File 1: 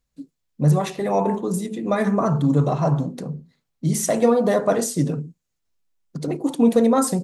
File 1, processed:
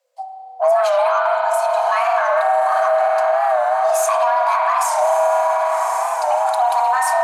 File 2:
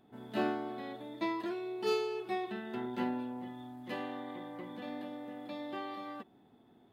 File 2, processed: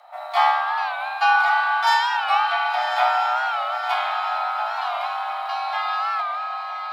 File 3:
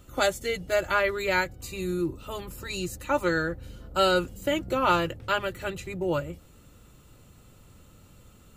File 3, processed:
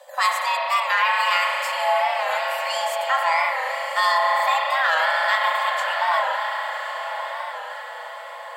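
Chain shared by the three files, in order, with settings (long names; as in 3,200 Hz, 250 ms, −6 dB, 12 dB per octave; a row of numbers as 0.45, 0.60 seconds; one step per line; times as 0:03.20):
in parallel at −5 dB: soft clipping −24 dBFS
on the sum: high-shelf EQ 10,000 Hz −5 dB
on a send: feedback delay with all-pass diffusion 1,128 ms, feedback 45%, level −8 dB
on the sum: spring reverb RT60 3.5 s, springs 33 ms, chirp 45 ms, DRR 0.5 dB
brickwall limiter −12 dBFS
frequency shifter +490 Hz
wow of a warped record 45 rpm, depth 100 cents
normalise the peak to −6 dBFS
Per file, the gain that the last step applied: +2.5, +10.5, +1.5 decibels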